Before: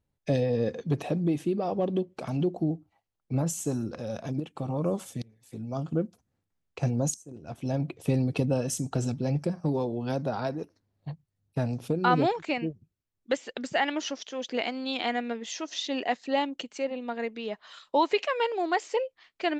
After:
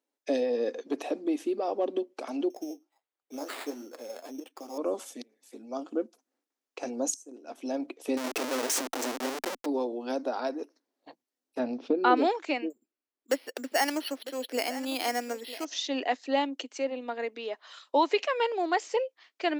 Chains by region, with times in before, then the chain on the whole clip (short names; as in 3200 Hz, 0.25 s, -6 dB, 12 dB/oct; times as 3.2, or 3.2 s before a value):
2.5–4.78 tone controls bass -7 dB, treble +1 dB + flange 1.5 Hz, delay 3 ms, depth 9.5 ms, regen +49% + sample-rate reducer 5900 Hz
8.17–9.66 high shelf 7000 Hz +10.5 dB + Schmitt trigger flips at -37 dBFS
11.59–12.17 LPF 4500 Hz 24 dB/oct + low shelf 280 Hz +10.5 dB
12.7–15.65 echo 0.952 s -14.5 dB + careless resampling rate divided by 6×, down filtered, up hold
whole clip: elliptic high-pass 260 Hz, stop band 40 dB; bell 5700 Hz +3.5 dB 0.62 oct